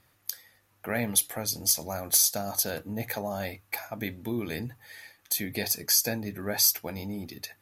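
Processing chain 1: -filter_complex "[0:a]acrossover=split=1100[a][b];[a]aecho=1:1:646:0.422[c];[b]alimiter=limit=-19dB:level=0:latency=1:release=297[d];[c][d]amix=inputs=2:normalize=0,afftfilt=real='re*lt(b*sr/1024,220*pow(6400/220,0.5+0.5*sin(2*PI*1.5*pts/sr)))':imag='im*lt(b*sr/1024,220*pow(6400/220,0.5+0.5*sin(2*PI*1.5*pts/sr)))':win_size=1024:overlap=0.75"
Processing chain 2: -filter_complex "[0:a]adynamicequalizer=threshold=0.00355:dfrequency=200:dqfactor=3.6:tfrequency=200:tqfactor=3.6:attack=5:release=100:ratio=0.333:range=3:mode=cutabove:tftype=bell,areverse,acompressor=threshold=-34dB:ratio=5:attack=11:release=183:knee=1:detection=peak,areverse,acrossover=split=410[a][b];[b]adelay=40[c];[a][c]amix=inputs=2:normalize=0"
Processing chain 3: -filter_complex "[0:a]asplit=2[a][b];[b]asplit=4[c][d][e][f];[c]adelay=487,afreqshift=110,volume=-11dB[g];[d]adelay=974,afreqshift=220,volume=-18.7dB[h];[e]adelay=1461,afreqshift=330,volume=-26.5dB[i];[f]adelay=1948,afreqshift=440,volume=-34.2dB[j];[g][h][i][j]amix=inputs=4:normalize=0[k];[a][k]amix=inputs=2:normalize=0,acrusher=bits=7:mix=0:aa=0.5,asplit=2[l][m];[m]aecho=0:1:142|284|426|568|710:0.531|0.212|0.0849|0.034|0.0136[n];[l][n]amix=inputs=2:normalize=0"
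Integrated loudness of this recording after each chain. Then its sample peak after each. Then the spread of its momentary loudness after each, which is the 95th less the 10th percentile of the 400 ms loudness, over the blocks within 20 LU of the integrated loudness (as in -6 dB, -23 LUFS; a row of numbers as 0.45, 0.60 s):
-36.5, -37.5, -26.0 LUFS; -16.0, -16.0, -10.0 dBFS; 8, 7, 15 LU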